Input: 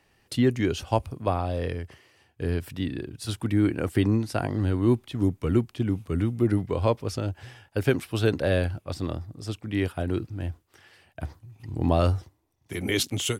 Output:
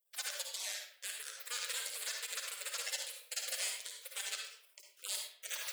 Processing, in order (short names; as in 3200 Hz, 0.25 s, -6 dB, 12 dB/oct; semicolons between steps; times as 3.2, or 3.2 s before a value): rattling part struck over -23 dBFS, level -20 dBFS; steep high-pass 320 Hz 48 dB/oct; spectral gate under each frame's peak -25 dB weak; limiter -32 dBFS, peak gain reduction 10.5 dB; flange 0.19 Hz, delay 9.4 ms, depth 9.6 ms, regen +65%; plate-style reverb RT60 1.2 s, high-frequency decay 0.55×, pre-delay 0.11 s, DRR 1.5 dB; speed mistake 33 rpm record played at 78 rpm; gain +11.5 dB